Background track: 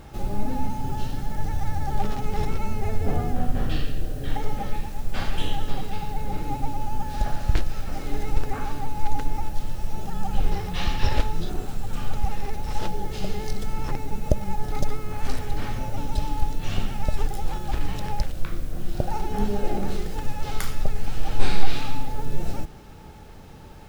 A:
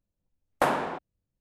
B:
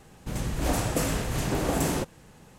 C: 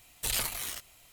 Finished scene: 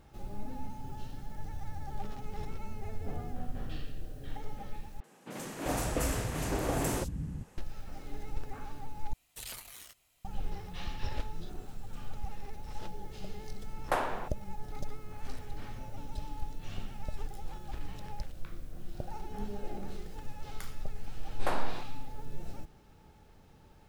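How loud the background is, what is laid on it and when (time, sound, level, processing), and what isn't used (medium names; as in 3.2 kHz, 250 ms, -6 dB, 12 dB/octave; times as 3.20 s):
background track -14 dB
5.00 s: replace with B -4.5 dB + three bands offset in time mids, highs, lows 40/390 ms, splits 190/3900 Hz
9.13 s: replace with C -13 dB
13.30 s: add A -6 dB + high-pass 340 Hz
20.85 s: add A -9.5 dB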